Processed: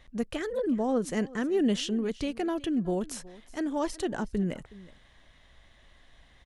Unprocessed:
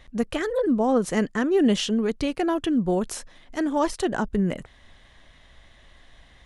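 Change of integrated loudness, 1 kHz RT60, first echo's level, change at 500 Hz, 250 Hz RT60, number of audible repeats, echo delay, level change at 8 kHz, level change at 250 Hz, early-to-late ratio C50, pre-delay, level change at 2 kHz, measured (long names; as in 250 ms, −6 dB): −6.0 dB, no reverb audible, −20.0 dB, −6.0 dB, no reverb audible, 1, 369 ms, −5.5 dB, −5.5 dB, no reverb audible, no reverb audible, −7.0 dB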